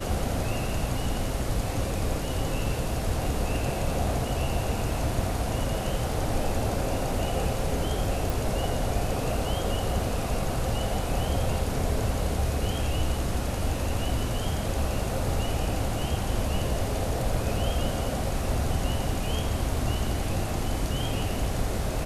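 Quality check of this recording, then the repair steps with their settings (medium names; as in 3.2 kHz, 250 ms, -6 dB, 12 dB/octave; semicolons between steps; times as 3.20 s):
8.30 s: pop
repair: de-click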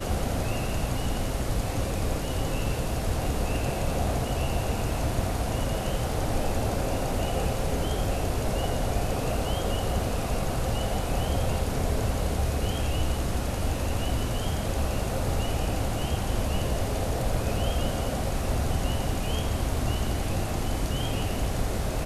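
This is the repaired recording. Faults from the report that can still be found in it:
nothing left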